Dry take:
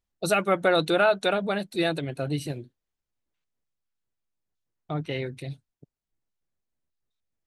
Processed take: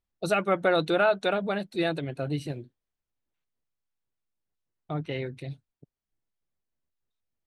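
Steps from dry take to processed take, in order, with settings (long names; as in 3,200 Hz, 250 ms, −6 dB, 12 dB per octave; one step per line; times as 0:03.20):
low-pass filter 3,800 Hz 6 dB per octave
0:02.22–0:04.96: floating-point word with a short mantissa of 8 bits
level −1.5 dB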